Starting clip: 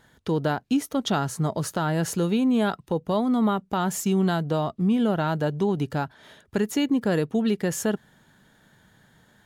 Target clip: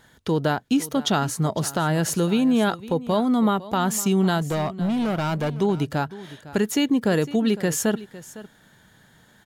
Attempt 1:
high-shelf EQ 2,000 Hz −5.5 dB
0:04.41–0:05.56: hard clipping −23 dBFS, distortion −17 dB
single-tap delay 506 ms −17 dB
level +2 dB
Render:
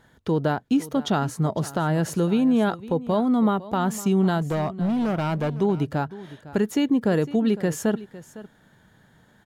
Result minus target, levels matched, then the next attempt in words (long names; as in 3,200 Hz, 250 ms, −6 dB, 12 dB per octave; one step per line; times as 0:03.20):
4,000 Hz band −6.0 dB
high-shelf EQ 2,000 Hz +3.5 dB
0:04.41–0:05.56: hard clipping −23 dBFS, distortion −16 dB
single-tap delay 506 ms −17 dB
level +2 dB